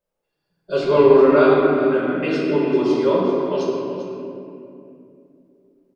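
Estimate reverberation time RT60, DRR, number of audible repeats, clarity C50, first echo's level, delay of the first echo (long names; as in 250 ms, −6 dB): 2.7 s, −7.0 dB, 1, −2.5 dB, −11.0 dB, 394 ms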